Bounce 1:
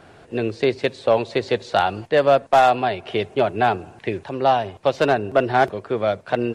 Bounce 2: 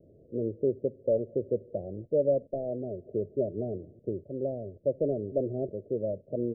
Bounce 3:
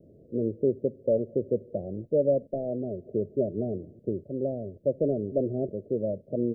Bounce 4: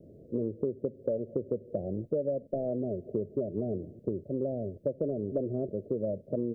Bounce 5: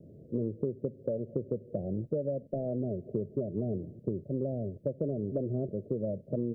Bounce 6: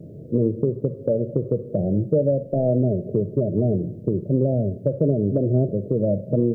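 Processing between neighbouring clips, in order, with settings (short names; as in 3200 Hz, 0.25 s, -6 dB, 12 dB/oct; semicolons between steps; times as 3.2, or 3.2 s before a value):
steep low-pass 610 Hz 96 dB/oct; gain -7.5 dB
bell 210 Hz +5 dB 1.1 oct; gain +1 dB
compressor 10:1, threshold -29 dBFS, peak gain reduction 11 dB; gain +2 dB
bell 140 Hz +7.5 dB 1.3 oct; gain -3 dB
shoebox room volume 1900 m³, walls furnished, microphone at 0.53 m; harmonic-percussive split harmonic +5 dB; gain +8.5 dB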